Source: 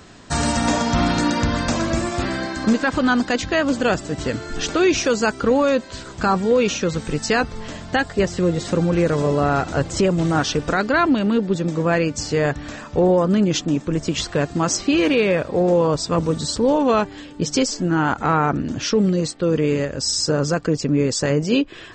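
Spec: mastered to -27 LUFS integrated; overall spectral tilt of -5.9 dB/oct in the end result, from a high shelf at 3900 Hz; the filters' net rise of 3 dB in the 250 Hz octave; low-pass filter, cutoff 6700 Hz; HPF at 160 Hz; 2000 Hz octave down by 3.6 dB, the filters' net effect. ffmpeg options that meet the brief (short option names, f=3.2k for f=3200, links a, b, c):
-af "highpass=160,lowpass=6.7k,equalizer=f=250:t=o:g=5,equalizer=f=2k:t=o:g=-3.5,highshelf=f=3.9k:g=-6.5,volume=-8dB"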